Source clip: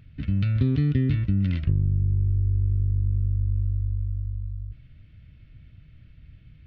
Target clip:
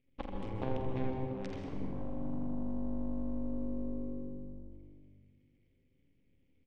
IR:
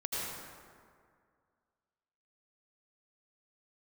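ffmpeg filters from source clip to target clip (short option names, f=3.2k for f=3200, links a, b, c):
-filter_complex "[0:a]aresample=16000,asoftclip=type=hard:threshold=-24dB,aresample=44100,asplit=3[a][b][c];[a]bandpass=f=270:t=q:w=8,volume=0dB[d];[b]bandpass=f=2.29k:t=q:w=8,volume=-6dB[e];[c]bandpass=f=3.01k:t=q:w=8,volume=-9dB[f];[d][e][f]amix=inputs=3:normalize=0,aeval=exprs='max(val(0),0)':c=same,aeval=exprs='0.0376*(cos(1*acos(clip(val(0)/0.0376,-1,1)))-cos(1*PI/2))+0.00944*(cos(2*acos(clip(val(0)/0.0376,-1,1)))-cos(2*PI/2))+0.0133*(cos(3*acos(clip(val(0)/0.0376,-1,1)))-cos(3*PI/2))+0.00266*(cos(8*acos(clip(val(0)/0.0376,-1,1)))-cos(8*PI/2))':c=same,lowshelf=f=68:g=6.5,acompressor=threshold=-49dB:ratio=10,asplit=2[g][h];[h]adelay=82,lowpass=f=2k:p=1,volume=-4.5dB,asplit=2[i][j];[j]adelay=82,lowpass=f=2k:p=1,volume=0.52,asplit=2[k][l];[l]adelay=82,lowpass=f=2k:p=1,volume=0.52,asplit=2[m][n];[n]adelay=82,lowpass=f=2k:p=1,volume=0.52,asplit=2[o][p];[p]adelay=82,lowpass=f=2k:p=1,volume=0.52,asplit=2[q][r];[r]adelay=82,lowpass=f=2k:p=1,volume=0.52,asplit=2[s][t];[t]adelay=82,lowpass=f=2k:p=1,volume=0.52[u];[g][i][k][m][o][q][s][u]amix=inputs=8:normalize=0,asplit=2[v][w];[1:a]atrim=start_sample=2205,lowshelf=f=480:g=9,adelay=46[x];[w][x]afir=irnorm=-1:irlink=0,volume=-8dB[y];[v][y]amix=inputs=2:normalize=0,volume=14.5dB"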